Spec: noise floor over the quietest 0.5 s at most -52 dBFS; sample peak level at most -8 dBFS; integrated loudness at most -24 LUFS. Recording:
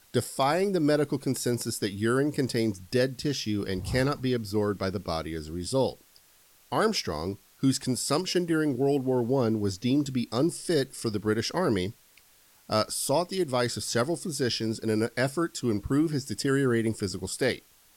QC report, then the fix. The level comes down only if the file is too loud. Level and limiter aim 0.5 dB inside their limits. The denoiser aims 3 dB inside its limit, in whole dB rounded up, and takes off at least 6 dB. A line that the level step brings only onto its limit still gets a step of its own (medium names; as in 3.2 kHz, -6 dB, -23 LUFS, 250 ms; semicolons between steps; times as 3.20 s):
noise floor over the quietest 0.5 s -60 dBFS: pass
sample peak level -12.0 dBFS: pass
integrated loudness -28.0 LUFS: pass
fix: none needed